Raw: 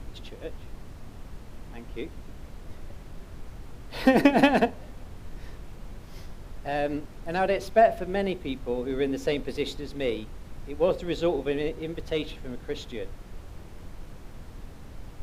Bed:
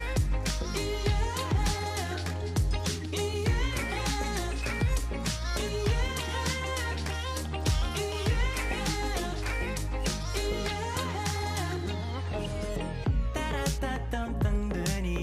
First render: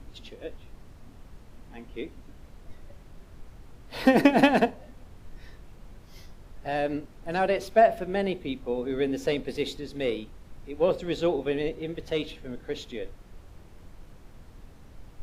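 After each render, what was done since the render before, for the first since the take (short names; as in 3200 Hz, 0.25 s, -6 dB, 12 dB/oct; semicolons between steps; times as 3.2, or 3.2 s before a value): noise print and reduce 6 dB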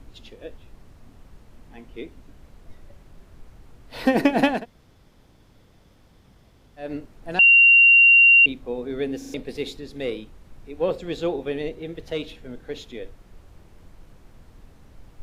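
4.58–6.84 room tone, crossfade 0.16 s; 7.39–8.46 bleep 2760 Hz -9.5 dBFS; 9.18 stutter in place 0.04 s, 4 plays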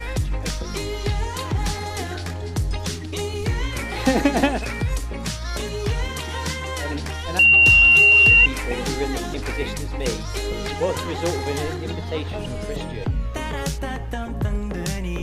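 add bed +3.5 dB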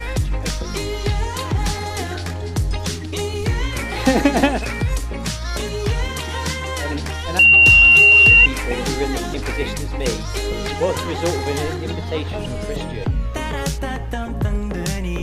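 gain +3 dB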